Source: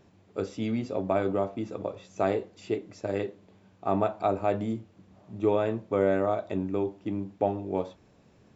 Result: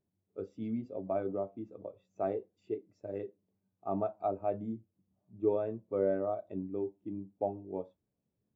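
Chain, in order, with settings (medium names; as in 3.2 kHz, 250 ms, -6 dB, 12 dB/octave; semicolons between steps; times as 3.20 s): spectral contrast expander 1.5:1; trim -6 dB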